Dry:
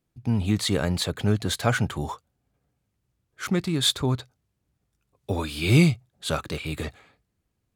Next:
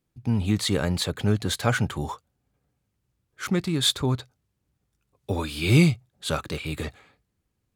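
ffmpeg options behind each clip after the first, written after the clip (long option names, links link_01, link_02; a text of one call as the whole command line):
ffmpeg -i in.wav -af "bandreject=frequency=670:width=15" out.wav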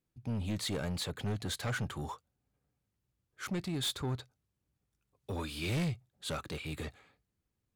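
ffmpeg -i in.wav -af "asoftclip=type=tanh:threshold=-22dB,volume=-7.5dB" out.wav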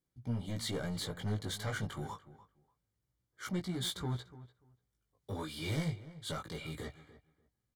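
ffmpeg -i in.wav -filter_complex "[0:a]flanger=delay=16.5:depth=2.7:speed=0.26,asuperstop=centerf=2600:order=20:qfactor=6.6,asplit=2[link_01][link_02];[link_02]adelay=293,lowpass=frequency=1900:poles=1,volume=-16dB,asplit=2[link_03][link_04];[link_04]adelay=293,lowpass=frequency=1900:poles=1,volume=0.18[link_05];[link_01][link_03][link_05]amix=inputs=3:normalize=0,volume=1dB" out.wav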